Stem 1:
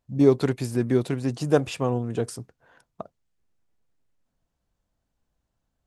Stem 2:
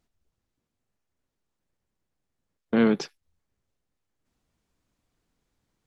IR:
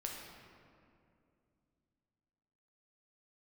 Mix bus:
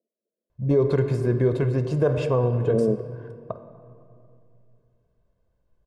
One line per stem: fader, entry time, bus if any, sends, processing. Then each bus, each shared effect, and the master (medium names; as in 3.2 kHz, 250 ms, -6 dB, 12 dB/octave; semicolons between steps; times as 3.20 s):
+1.0 dB, 0.50 s, send -3.5 dB, none
+1.5 dB, 0.00 s, no send, Chebyshev band-pass 210–650 Hz, order 4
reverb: on, RT60 2.5 s, pre-delay 7 ms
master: low-pass 1.1 kHz 6 dB/octave; comb 1.9 ms, depth 62%; peak limiter -12 dBFS, peak gain reduction 10 dB